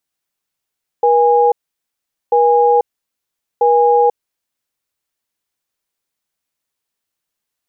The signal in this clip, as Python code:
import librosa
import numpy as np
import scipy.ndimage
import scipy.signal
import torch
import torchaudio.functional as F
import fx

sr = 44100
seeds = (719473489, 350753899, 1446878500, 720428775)

y = fx.cadence(sr, length_s=3.59, low_hz=480.0, high_hz=822.0, on_s=0.49, off_s=0.8, level_db=-11.0)